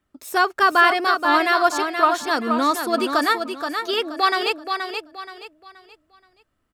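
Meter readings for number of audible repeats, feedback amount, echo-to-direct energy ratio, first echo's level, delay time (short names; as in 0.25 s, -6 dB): 3, 32%, -6.0 dB, -6.5 dB, 0.476 s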